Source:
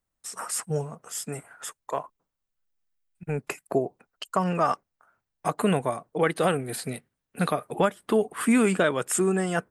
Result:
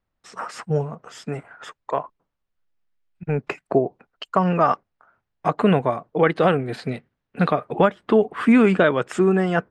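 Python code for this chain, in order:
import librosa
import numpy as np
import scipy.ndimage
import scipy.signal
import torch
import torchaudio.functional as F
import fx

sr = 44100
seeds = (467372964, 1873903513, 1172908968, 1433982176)

y = fx.air_absorb(x, sr, metres=210.0)
y = F.gain(torch.from_numpy(y), 6.5).numpy()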